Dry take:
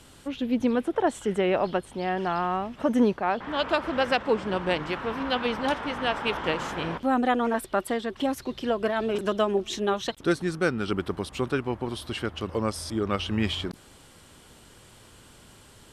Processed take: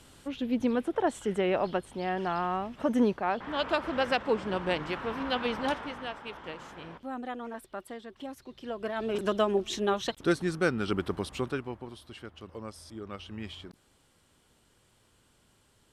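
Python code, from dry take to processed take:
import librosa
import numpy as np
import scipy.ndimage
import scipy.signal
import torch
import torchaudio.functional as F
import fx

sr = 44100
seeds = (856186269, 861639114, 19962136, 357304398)

y = fx.gain(x, sr, db=fx.line((5.69, -3.5), (6.22, -14.0), (8.51, -14.0), (9.23, -2.0), (11.3, -2.0), (12.01, -14.0)))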